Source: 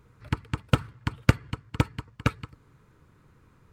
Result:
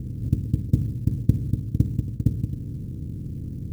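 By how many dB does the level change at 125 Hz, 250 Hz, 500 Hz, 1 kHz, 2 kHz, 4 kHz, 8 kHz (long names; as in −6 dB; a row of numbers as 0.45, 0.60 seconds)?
+6.0 dB, +4.5 dB, −7.0 dB, below −25 dB, below −25 dB, below −15 dB, can't be measured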